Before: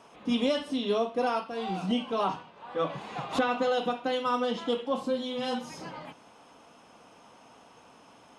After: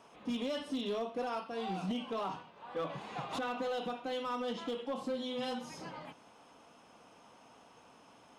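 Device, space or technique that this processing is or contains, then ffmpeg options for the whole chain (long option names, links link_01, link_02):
limiter into clipper: -af "alimiter=limit=-23dB:level=0:latency=1:release=90,asoftclip=type=hard:threshold=-26dB,volume=-4.5dB"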